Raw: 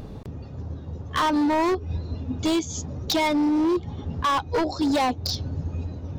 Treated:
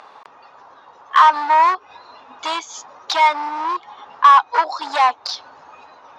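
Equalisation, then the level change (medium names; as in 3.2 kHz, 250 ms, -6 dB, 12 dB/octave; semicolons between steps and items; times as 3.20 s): resonant high-pass 1 kHz, resonance Q 2.4; low-pass 6.6 kHz 12 dB/octave; peaking EQ 1.4 kHz +7 dB 2.9 oct; 0.0 dB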